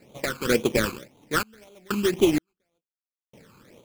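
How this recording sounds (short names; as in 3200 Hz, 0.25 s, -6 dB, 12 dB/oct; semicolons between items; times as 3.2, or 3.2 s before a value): aliases and images of a low sample rate 2900 Hz, jitter 20%; phasing stages 12, 1.9 Hz, lowest notch 590–1700 Hz; random-step tremolo 2.1 Hz, depth 100%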